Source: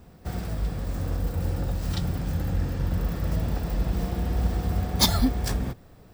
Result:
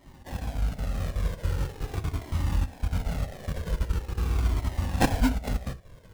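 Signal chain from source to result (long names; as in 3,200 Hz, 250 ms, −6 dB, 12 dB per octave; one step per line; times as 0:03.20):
time-frequency cells dropped at random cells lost 33%
high-shelf EQ 4,000 Hz +8 dB
in parallel at −2 dB: downward compressor, threshold −34 dBFS, peak gain reduction 20 dB
on the sum: sample-rate reduction 1,300 Hz, jitter 20%
0:02.13–0:02.66: double-tracking delay 27 ms −8 dB
on a send at −12.5 dB: convolution reverb, pre-delay 4 ms
on the sum: flanger whose copies keep moving one way falling 0.43 Hz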